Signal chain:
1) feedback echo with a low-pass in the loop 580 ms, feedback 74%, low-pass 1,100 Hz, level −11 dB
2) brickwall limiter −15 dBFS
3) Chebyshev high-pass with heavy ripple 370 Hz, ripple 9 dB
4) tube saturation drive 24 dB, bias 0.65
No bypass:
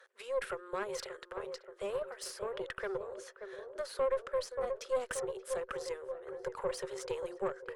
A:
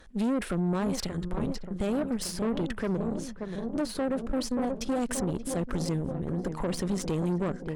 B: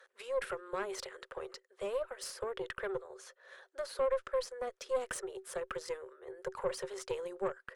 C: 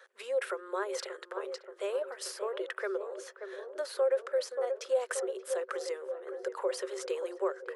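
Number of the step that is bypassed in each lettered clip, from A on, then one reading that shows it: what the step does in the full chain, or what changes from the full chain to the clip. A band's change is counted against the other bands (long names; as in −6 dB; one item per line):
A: 3, 125 Hz band +20.0 dB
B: 1, change in momentary loudness spread +2 LU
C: 4, 1 kHz band −2.0 dB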